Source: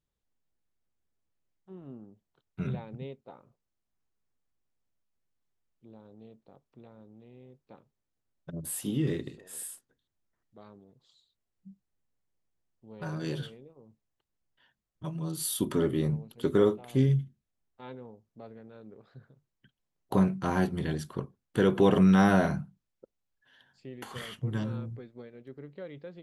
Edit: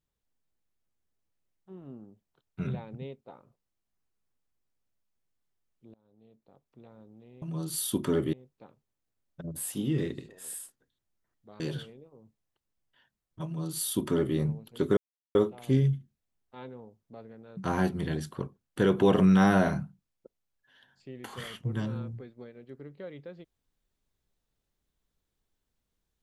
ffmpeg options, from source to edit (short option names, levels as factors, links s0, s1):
-filter_complex "[0:a]asplit=7[s0][s1][s2][s3][s4][s5][s6];[s0]atrim=end=5.94,asetpts=PTS-STARTPTS,afade=t=out:st=5.936:d=0.004:c=hsin:silence=0.0707946[s7];[s1]atrim=start=5.94:end=7.422,asetpts=PTS-STARTPTS,afade=t=in:d=0.98:silence=0.0707946[s8];[s2]atrim=start=15.088:end=16.002[s9];[s3]atrim=start=7.418:end=10.692[s10];[s4]atrim=start=13.238:end=16.61,asetpts=PTS-STARTPTS,afade=t=out:st=3.368:d=0.004:c=hsin,apad=pad_dur=0.38[s11];[s5]atrim=start=16.61:end=18.832,asetpts=PTS-STARTPTS,afade=t=in:d=0.004:c=hsin[s12];[s6]atrim=start=20.348[s13];[s7][s8]concat=n=2:v=0:a=1[s14];[s14][s9]acrossfade=d=0.004:c1=hsin:c2=hsin[s15];[s15][s10]acrossfade=d=0.004:c1=hsin:c2=hsin[s16];[s11][s12]concat=n=2:v=0:a=1[s17];[s16][s17]acrossfade=d=0.004:c1=hsin:c2=hsin[s18];[s18][s13]acrossfade=d=0.004:c1=hsin:c2=hsin"